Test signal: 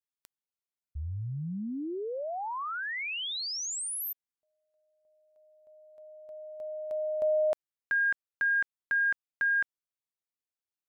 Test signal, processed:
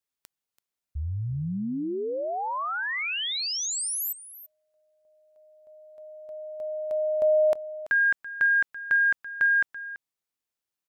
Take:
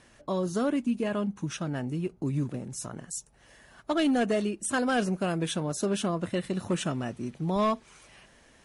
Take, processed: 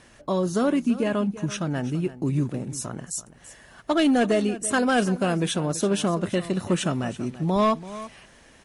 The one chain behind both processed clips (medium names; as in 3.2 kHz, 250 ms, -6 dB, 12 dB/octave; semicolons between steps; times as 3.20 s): delay 334 ms -15.5 dB; trim +5 dB